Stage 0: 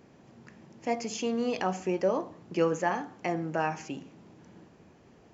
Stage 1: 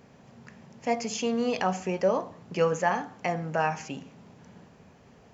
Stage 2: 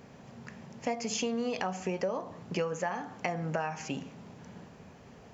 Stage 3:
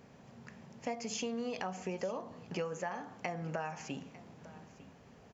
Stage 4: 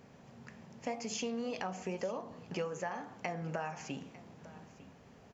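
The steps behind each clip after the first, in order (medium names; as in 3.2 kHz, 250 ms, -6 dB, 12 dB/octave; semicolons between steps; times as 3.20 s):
peaking EQ 330 Hz -13 dB 0.28 oct; trim +3.5 dB
compression 10:1, threshold -31 dBFS, peak gain reduction 12.5 dB; trim +2.5 dB
delay 901 ms -18.5 dB; trim -5.5 dB
flange 1.9 Hz, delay 7.3 ms, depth 6.5 ms, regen -84%; trim +4.5 dB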